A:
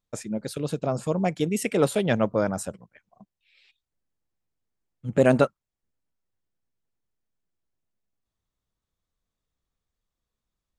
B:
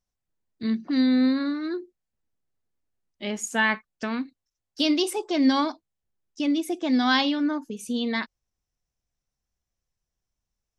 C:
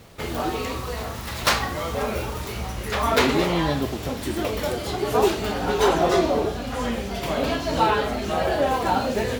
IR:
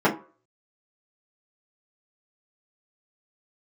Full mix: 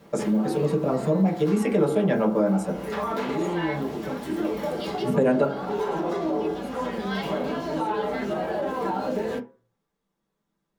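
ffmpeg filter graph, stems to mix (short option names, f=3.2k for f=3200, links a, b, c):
-filter_complex "[0:a]bandreject=f=45.28:t=h:w=4,bandreject=f=90.56:t=h:w=4,bandreject=f=135.84:t=h:w=4,bandreject=f=181.12:t=h:w=4,bandreject=f=226.4:t=h:w=4,bandreject=f=271.68:t=h:w=4,bandreject=f=316.96:t=h:w=4,bandreject=f=362.24:t=h:w=4,bandreject=f=407.52:t=h:w=4,bandreject=f=452.8:t=h:w=4,bandreject=f=498.08:t=h:w=4,bandreject=f=543.36:t=h:w=4,bandreject=f=588.64:t=h:w=4,bandreject=f=633.92:t=h:w=4,bandreject=f=679.2:t=h:w=4,bandreject=f=724.48:t=h:w=4,bandreject=f=769.76:t=h:w=4,bandreject=f=815.04:t=h:w=4,bandreject=f=860.32:t=h:w=4,bandreject=f=905.6:t=h:w=4,bandreject=f=950.88:t=h:w=4,bandreject=f=996.16:t=h:w=4,bandreject=f=1.04144k:t=h:w=4,bandreject=f=1.08672k:t=h:w=4,bandreject=f=1.132k:t=h:w=4,bandreject=f=1.17728k:t=h:w=4,bandreject=f=1.22256k:t=h:w=4,bandreject=f=1.26784k:t=h:w=4,bandreject=f=1.31312k:t=h:w=4,bandreject=f=1.3584k:t=h:w=4,bandreject=f=1.40368k:t=h:w=4,bandreject=f=1.44896k:t=h:w=4,bandreject=f=1.49424k:t=h:w=4,bandreject=f=1.53952k:t=h:w=4,bandreject=f=1.5848k:t=h:w=4,volume=-1dB,asplit=2[a][b];[b]volume=-9dB[c];[1:a]highpass=1.2k,volume=-17.5dB,asplit=2[d][e];[e]volume=-7dB[f];[2:a]alimiter=limit=-16.5dB:level=0:latency=1:release=67,volume=-12.5dB,asplit=2[g][h];[h]volume=-10.5dB[i];[3:a]atrim=start_sample=2205[j];[c][f][i]amix=inputs=3:normalize=0[k];[k][j]afir=irnorm=-1:irlink=0[l];[a][d][g][l]amix=inputs=4:normalize=0,acompressor=threshold=-22dB:ratio=3"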